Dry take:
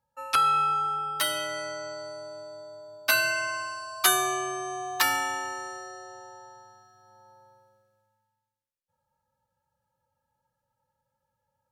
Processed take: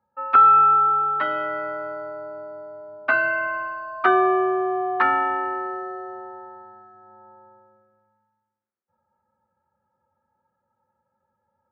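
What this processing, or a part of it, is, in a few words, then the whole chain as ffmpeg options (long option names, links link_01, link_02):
bass cabinet: -af "highpass=83,equalizer=frequency=84:width_type=q:width=4:gain=5,equalizer=frequency=130:width_type=q:width=4:gain=-7,equalizer=frequency=220:width_type=q:width=4:gain=10,equalizer=frequency=380:width_type=q:width=4:gain=10,equalizer=frequency=740:width_type=q:width=4:gain=5,equalizer=frequency=1300:width_type=q:width=4:gain=7,lowpass=frequency=2000:width=0.5412,lowpass=frequency=2000:width=1.3066,volume=3dB"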